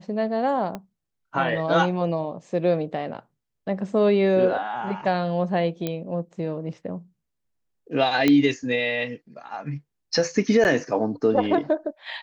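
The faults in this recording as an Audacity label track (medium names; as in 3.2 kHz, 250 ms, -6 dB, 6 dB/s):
0.750000	0.750000	pop -18 dBFS
5.870000	5.870000	pop -13 dBFS
8.280000	8.280000	pop -7 dBFS
10.640000	10.650000	dropout 9.4 ms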